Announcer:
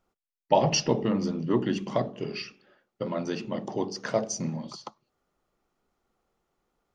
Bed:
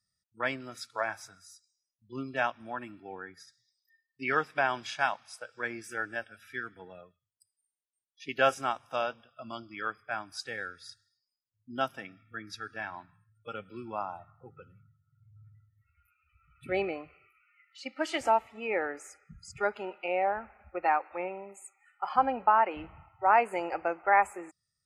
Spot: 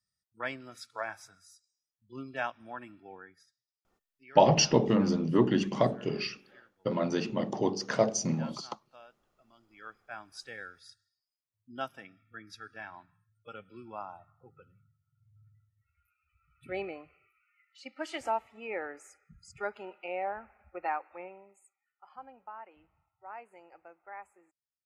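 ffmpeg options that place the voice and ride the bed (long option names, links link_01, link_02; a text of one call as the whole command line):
ffmpeg -i stem1.wav -i stem2.wav -filter_complex "[0:a]adelay=3850,volume=1dB[link_01];[1:a]volume=12dB,afade=type=out:start_time=3.05:duration=0.61:silence=0.125893,afade=type=in:start_time=9.56:duration=0.81:silence=0.149624,afade=type=out:start_time=20.85:duration=1.01:silence=0.149624[link_02];[link_01][link_02]amix=inputs=2:normalize=0" out.wav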